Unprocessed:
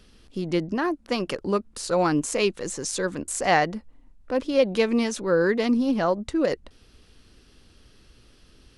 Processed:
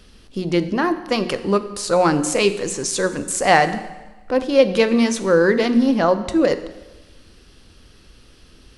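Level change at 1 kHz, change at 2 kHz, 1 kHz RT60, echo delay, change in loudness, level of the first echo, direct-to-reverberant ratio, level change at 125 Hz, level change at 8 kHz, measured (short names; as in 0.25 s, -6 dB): +6.5 dB, +6.5 dB, 1.2 s, none, +6.0 dB, none, 10.5 dB, +5.5 dB, +6.5 dB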